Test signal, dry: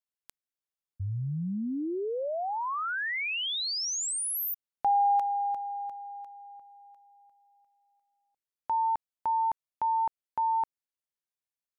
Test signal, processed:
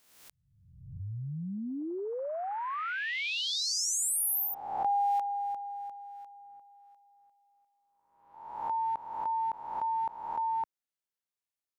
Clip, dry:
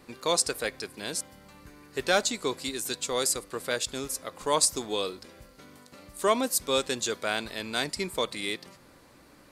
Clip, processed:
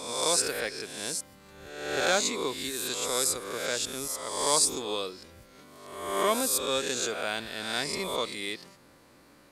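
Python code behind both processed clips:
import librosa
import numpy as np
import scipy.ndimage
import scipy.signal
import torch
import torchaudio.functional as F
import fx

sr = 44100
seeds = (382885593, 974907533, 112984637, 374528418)

y = fx.spec_swells(x, sr, rise_s=1.02)
y = fx.low_shelf(y, sr, hz=69.0, db=-5.5)
y = F.gain(torch.from_numpy(y), -4.0).numpy()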